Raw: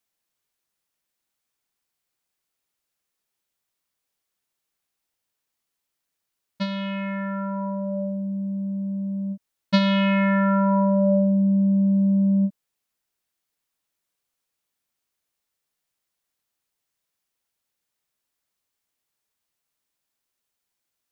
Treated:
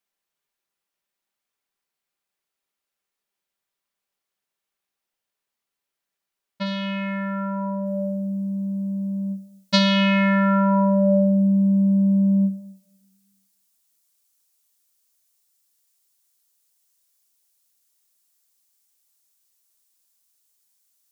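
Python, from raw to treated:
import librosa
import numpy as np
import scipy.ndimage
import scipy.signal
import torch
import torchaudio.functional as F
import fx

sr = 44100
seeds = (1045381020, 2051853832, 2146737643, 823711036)

y = fx.bass_treble(x, sr, bass_db=-6, treble_db=fx.steps((0.0, -4.0), (6.65, 9.0), (7.85, 15.0)))
y = fx.room_shoebox(y, sr, seeds[0], volume_m3=2400.0, walls='furnished', distance_m=1.2)
y = y * 10.0 ** (-1.0 / 20.0)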